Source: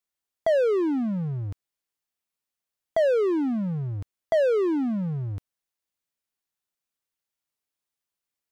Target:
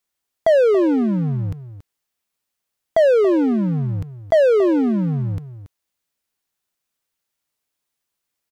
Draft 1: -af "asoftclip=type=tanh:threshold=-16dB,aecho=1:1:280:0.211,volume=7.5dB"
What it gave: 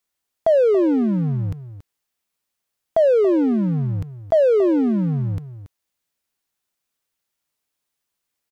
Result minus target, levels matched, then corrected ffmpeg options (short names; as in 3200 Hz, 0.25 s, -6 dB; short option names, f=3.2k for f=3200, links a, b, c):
soft clip: distortion +18 dB
-af "asoftclip=type=tanh:threshold=-6dB,aecho=1:1:280:0.211,volume=7.5dB"